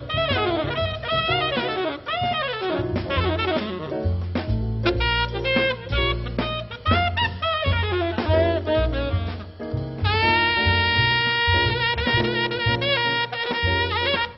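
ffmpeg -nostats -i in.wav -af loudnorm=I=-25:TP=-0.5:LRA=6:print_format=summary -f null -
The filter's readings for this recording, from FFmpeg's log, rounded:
Input Integrated:    -21.9 LUFS
Input True Peak:      -6.0 dBTP
Input LRA:             3.5 LU
Input Threshold:     -31.9 LUFS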